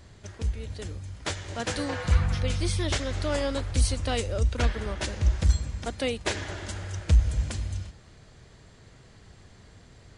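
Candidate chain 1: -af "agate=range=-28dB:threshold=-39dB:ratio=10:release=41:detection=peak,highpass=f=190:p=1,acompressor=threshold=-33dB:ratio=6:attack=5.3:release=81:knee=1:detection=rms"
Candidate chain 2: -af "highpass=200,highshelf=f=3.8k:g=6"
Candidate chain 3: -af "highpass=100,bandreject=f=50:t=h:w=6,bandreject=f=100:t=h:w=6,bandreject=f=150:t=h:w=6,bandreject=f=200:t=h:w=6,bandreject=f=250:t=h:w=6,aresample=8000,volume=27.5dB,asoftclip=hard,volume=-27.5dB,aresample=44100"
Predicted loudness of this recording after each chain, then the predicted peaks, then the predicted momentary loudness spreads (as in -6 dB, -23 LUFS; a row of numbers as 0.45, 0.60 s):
-38.5, -31.5, -35.0 LUFS; -21.5, -12.5, -23.5 dBFS; 6, 14, 9 LU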